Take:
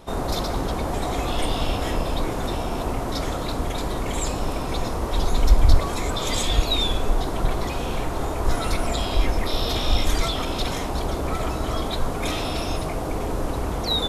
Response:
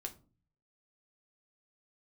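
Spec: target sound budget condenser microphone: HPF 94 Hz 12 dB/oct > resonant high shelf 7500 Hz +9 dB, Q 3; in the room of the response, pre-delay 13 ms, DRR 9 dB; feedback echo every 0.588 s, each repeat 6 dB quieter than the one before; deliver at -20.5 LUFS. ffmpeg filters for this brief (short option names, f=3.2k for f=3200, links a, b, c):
-filter_complex "[0:a]aecho=1:1:588|1176|1764|2352|2940|3528:0.501|0.251|0.125|0.0626|0.0313|0.0157,asplit=2[a][b];[1:a]atrim=start_sample=2205,adelay=13[c];[b][c]afir=irnorm=-1:irlink=0,volume=-6.5dB[d];[a][d]amix=inputs=2:normalize=0,highpass=94,highshelf=f=7.5k:t=q:w=3:g=9,volume=3.5dB"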